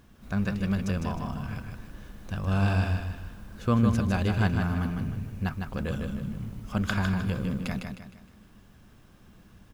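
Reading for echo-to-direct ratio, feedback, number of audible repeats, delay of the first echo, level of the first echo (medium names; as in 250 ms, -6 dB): -4.5 dB, 39%, 4, 155 ms, -5.0 dB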